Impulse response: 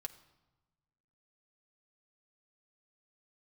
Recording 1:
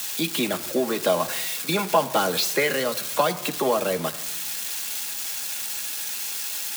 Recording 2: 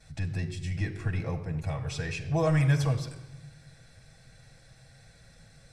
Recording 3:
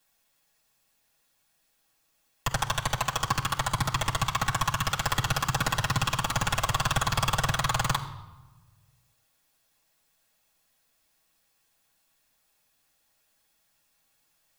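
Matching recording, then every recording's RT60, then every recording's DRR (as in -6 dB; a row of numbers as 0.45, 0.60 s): 1; not exponential, not exponential, not exponential; 3.5, -12.0, -5.0 dB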